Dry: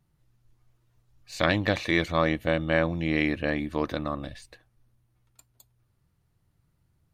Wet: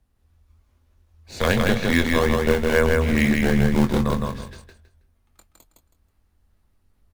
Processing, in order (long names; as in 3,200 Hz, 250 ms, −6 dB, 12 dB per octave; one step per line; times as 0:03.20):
0:03.37–0:04.10: low-shelf EQ 240 Hz +10 dB
frequency shifter −87 Hz
in parallel at −3.5 dB: sample-and-hold swept by an LFO 22×, swing 160% 2.4 Hz
on the sum: double-tracking delay 23 ms −9 dB
repeating echo 161 ms, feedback 23%, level −3 dB